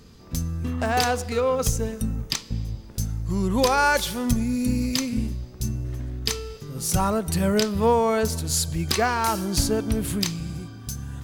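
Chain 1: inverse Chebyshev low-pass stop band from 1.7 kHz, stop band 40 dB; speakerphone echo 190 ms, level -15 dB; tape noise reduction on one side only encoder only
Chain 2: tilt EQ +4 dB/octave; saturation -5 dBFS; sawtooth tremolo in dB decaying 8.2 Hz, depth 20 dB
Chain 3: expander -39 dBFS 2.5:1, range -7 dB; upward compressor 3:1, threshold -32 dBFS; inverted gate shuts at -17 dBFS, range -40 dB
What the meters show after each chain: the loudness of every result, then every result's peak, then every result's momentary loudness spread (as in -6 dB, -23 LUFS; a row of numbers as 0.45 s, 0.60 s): -26.5 LUFS, -26.5 LUFS, -35.0 LUFS; -9.0 dBFS, -5.5 dBFS, -13.0 dBFS; 11 LU, 16 LU, 19 LU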